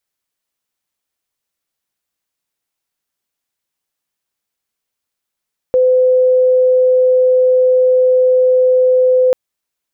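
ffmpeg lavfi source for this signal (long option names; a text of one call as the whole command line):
ffmpeg -f lavfi -i "sine=frequency=509:duration=3.59:sample_rate=44100,volume=10.56dB" out.wav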